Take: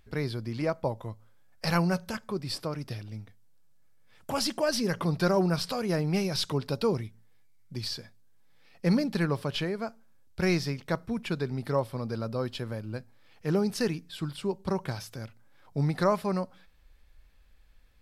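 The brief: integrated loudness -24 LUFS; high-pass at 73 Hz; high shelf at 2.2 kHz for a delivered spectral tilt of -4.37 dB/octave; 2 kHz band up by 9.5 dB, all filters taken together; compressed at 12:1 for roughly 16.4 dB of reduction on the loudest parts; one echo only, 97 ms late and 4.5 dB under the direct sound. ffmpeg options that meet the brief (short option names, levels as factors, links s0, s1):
-af "highpass=73,equalizer=f=2000:t=o:g=9,highshelf=f=2200:g=6,acompressor=threshold=0.0178:ratio=12,aecho=1:1:97:0.596,volume=5.31"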